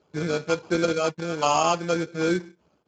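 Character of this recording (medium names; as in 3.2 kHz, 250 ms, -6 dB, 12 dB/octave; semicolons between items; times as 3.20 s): tremolo saw down 1.4 Hz, depth 35%; aliases and images of a low sample rate 1.9 kHz, jitter 0%; Speex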